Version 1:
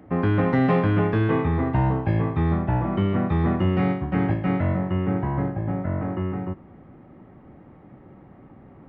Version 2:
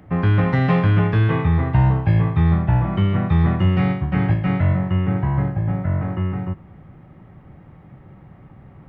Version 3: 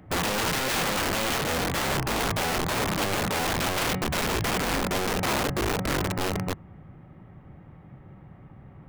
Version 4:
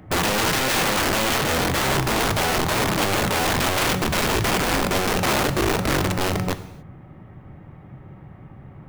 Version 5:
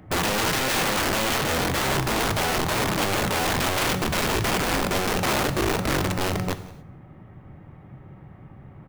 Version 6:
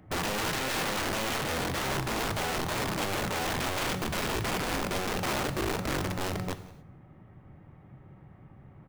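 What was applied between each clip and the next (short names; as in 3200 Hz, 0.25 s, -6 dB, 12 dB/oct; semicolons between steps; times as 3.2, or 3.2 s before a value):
EQ curve 160 Hz 0 dB, 250 Hz -11 dB, 3400 Hz -1 dB; gain +7 dB
wrapped overs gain 18 dB; gain -3.5 dB
non-linear reverb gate 0.31 s falling, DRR 10.5 dB; gain +5 dB
echo 0.178 s -22.5 dB; gain -2.5 dB
tracing distortion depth 0.026 ms; gain -7 dB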